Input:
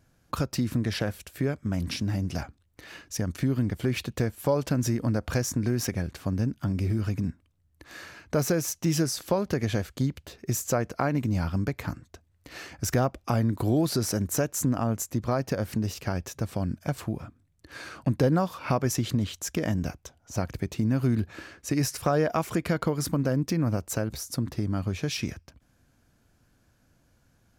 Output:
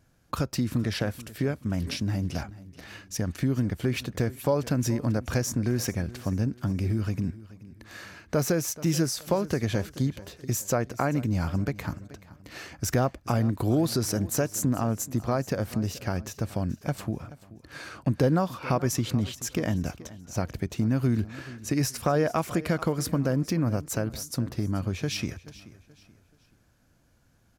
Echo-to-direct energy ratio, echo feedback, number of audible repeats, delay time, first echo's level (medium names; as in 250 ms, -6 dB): -17.5 dB, 36%, 2, 430 ms, -18.0 dB